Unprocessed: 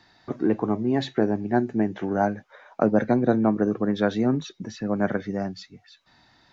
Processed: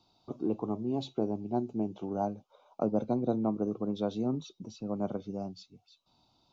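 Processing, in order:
Butterworth band-reject 1,800 Hz, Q 1.1
level −9 dB

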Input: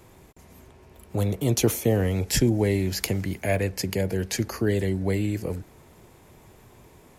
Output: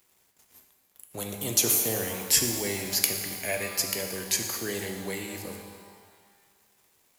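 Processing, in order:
spectral tilt +3.5 dB per octave
dead-zone distortion −49 dBFS
reverb with rising layers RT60 1.7 s, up +12 semitones, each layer −8 dB, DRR 3.5 dB
level −5 dB

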